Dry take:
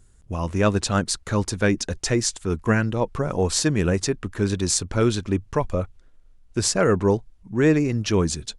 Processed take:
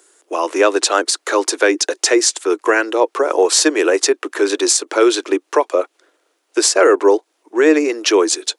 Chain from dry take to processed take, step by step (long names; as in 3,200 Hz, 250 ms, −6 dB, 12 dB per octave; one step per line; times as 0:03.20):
Butterworth high-pass 310 Hz 72 dB per octave
in parallel at −1.5 dB: downward compressor, threshold −29 dBFS, peak gain reduction 13.5 dB
on the sum: boost into a limiter +9 dB
level −1 dB